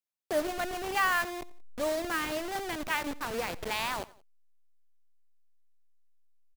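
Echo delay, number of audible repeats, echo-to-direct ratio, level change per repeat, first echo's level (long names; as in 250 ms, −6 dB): 88 ms, 2, −19.5 dB, −6.5 dB, −20.5 dB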